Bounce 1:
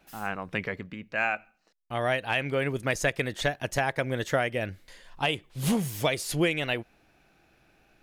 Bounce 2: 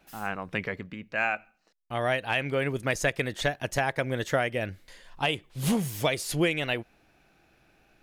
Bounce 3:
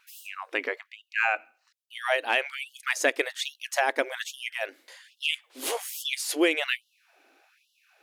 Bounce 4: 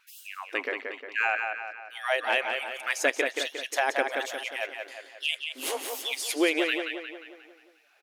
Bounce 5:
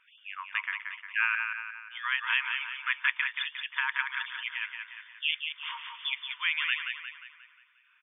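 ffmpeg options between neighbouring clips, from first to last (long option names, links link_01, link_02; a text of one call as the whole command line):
ffmpeg -i in.wav -af anull out.wav
ffmpeg -i in.wav -af "afftfilt=real='re*gte(b*sr/1024,220*pow(2800/220,0.5+0.5*sin(2*PI*1.2*pts/sr)))':imag='im*gte(b*sr/1024,220*pow(2800/220,0.5+0.5*sin(2*PI*1.2*pts/sr)))':win_size=1024:overlap=0.75,volume=3dB" out.wav
ffmpeg -i in.wav -filter_complex "[0:a]asplit=2[link_01][link_02];[link_02]adelay=178,lowpass=frequency=4200:poles=1,volume=-4.5dB,asplit=2[link_03][link_04];[link_04]adelay=178,lowpass=frequency=4200:poles=1,volume=0.53,asplit=2[link_05][link_06];[link_06]adelay=178,lowpass=frequency=4200:poles=1,volume=0.53,asplit=2[link_07][link_08];[link_08]adelay=178,lowpass=frequency=4200:poles=1,volume=0.53,asplit=2[link_09][link_10];[link_10]adelay=178,lowpass=frequency=4200:poles=1,volume=0.53,asplit=2[link_11][link_12];[link_12]adelay=178,lowpass=frequency=4200:poles=1,volume=0.53,asplit=2[link_13][link_14];[link_14]adelay=178,lowpass=frequency=4200:poles=1,volume=0.53[link_15];[link_01][link_03][link_05][link_07][link_09][link_11][link_13][link_15]amix=inputs=8:normalize=0,volume=-1.5dB" out.wav
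ffmpeg -i in.wav -af "afftfilt=real='re*between(b*sr/4096,910,3600)':imag='im*between(b*sr/4096,910,3600)':win_size=4096:overlap=0.75" out.wav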